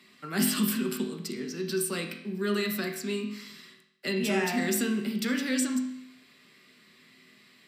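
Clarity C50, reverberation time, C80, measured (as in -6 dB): 7.0 dB, 0.75 s, 9.5 dB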